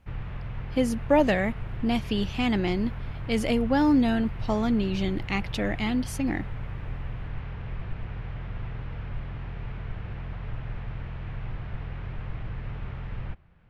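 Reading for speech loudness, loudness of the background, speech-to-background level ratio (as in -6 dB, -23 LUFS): -26.5 LUFS, -37.5 LUFS, 11.0 dB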